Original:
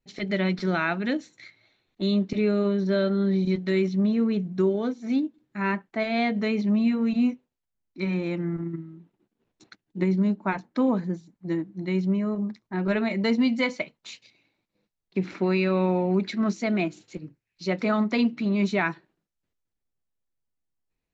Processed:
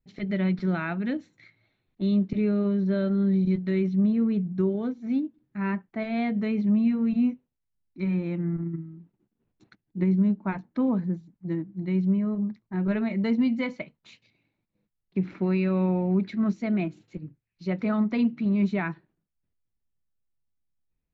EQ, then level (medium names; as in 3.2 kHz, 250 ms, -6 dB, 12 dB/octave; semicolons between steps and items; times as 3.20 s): tone controls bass +10 dB, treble -11 dB; -6.0 dB